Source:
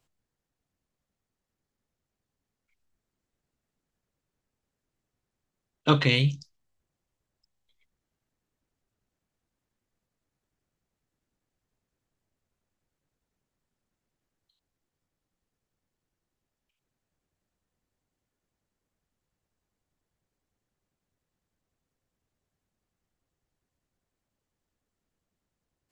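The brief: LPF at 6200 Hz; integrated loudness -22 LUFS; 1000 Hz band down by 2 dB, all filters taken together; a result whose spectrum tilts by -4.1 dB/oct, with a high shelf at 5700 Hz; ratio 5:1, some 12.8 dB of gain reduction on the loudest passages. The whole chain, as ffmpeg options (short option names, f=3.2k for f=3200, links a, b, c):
-af "lowpass=6.2k,equalizer=f=1k:t=o:g=-3,highshelf=f=5.7k:g=8.5,acompressor=threshold=-31dB:ratio=5,volume=14dB"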